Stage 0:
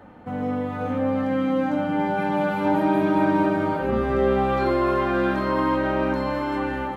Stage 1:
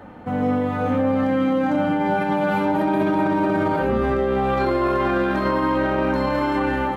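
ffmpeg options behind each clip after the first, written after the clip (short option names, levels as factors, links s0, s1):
-af "alimiter=limit=0.119:level=0:latency=1:release=15,volume=1.88"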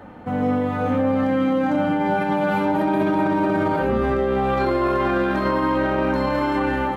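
-af anull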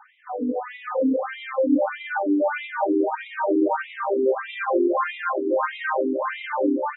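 -af "dynaudnorm=f=370:g=3:m=1.41,aecho=1:1:313:0.447,afftfilt=real='re*between(b*sr/1024,320*pow(2800/320,0.5+0.5*sin(2*PI*1.6*pts/sr))/1.41,320*pow(2800/320,0.5+0.5*sin(2*PI*1.6*pts/sr))*1.41)':imag='im*between(b*sr/1024,320*pow(2800/320,0.5+0.5*sin(2*PI*1.6*pts/sr))/1.41,320*pow(2800/320,0.5+0.5*sin(2*PI*1.6*pts/sr))*1.41)':win_size=1024:overlap=0.75"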